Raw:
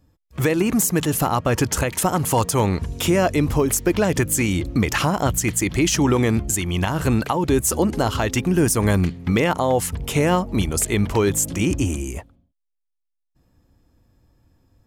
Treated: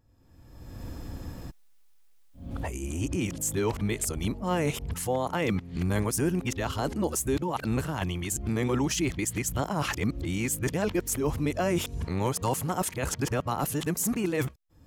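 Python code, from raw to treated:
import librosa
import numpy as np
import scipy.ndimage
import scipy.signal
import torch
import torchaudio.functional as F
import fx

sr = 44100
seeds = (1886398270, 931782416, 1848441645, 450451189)

y = np.flip(x).copy()
y = fx.recorder_agc(y, sr, target_db=-17.0, rise_db_per_s=36.0, max_gain_db=30)
y = y * 10.0 ** (-9.0 / 20.0)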